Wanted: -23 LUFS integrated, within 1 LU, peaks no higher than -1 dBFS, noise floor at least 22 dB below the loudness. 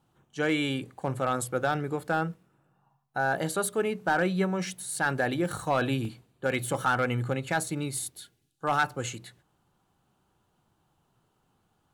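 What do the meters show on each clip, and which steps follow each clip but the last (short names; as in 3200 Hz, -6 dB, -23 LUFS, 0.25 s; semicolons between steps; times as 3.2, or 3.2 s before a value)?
clipped 0.2%; flat tops at -17.0 dBFS; dropouts 1; longest dropout 1.3 ms; loudness -29.5 LUFS; peak -17.0 dBFS; loudness target -23.0 LUFS
-> clip repair -17 dBFS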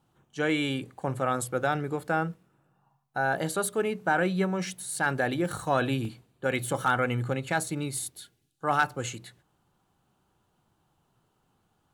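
clipped 0.0%; dropouts 1; longest dropout 1.3 ms
-> interpolate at 6.05, 1.3 ms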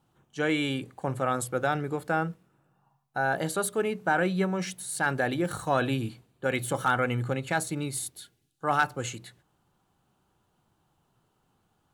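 dropouts 0; loudness -29.0 LUFS; peak -11.5 dBFS; loudness target -23.0 LUFS
-> gain +6 dB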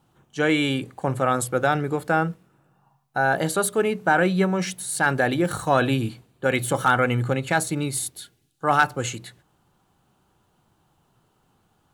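loudness -23.0 LUFS; peak -5.5 dBFS; noise floor -67 dBFS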